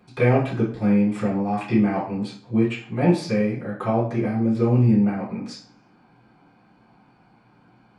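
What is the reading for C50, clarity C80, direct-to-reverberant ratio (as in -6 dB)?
6.5 dB, 11.0 dB, -12.0 dB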